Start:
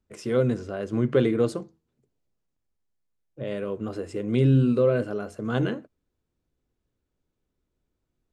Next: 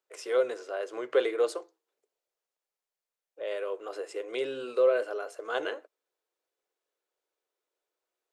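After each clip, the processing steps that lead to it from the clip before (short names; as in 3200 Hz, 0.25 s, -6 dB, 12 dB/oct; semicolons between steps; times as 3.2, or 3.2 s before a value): inverse Chebyshev high-pass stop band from 220 Hz, stop band 40 dB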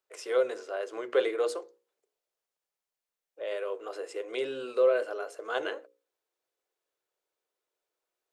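notches 60/120/180/240/300/360/420/480/540 Hz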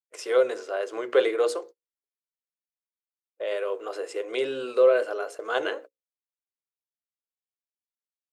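gate -47 dBFS, range -33 dB; gain +5 dB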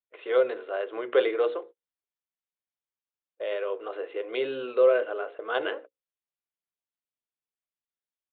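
downsampling 8000 Hz; gain -1.5 dB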